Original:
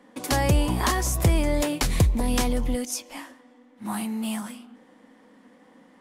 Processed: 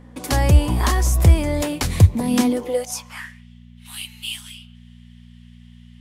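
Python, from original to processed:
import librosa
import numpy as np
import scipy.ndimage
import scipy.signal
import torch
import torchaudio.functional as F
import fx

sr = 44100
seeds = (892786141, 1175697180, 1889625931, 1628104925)

y = fx.filter_sweep_highpass(x, sr, from_hz=69.0, to_hz=3000.0, start_s=1.93, end_s=3.47, q=3.9)
y = fx.dmg_buzz(y, sr, base_hz=60.0, harmonics=4, level_db=-46.0, tilt_db=-2, odd_only=False)
y = y * librosa.db_to_amplitude(1.5)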